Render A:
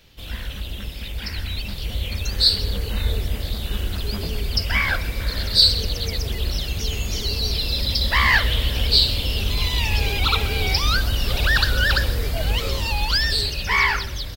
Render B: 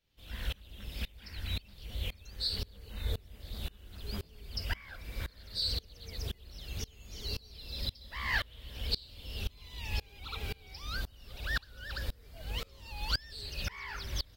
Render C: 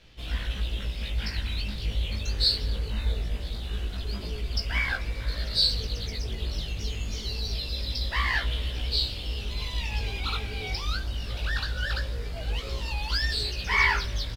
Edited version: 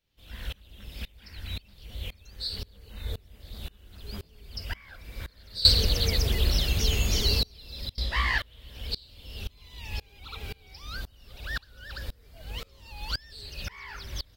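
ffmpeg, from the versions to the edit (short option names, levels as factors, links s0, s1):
-filter_complex "[1:a]asplit=3[s0][s1][s2];[s0]atrim=end=5.652[s3];[0:a]atrim=start=5.648:end=7.432[s4];[s1]atrim=start=7.428:end=7.982[s5];[2:a]atrim=start=7.978:end=8.382[s6];[s2]atrim=start=8.378[s7];[s3][s4]acrossfade=d=0.004:c1=hsin:c2=hsin[s8];[s8][s5]acrossfade=d=0.004:c1=hsin:c2=hsin[s9];[s9][s6]acrossfade=d=0.004:c1=hsin:c2=hsin[s10];[s10][s7]acrossfade=d=0.004:c1=hsin:c2=hsin"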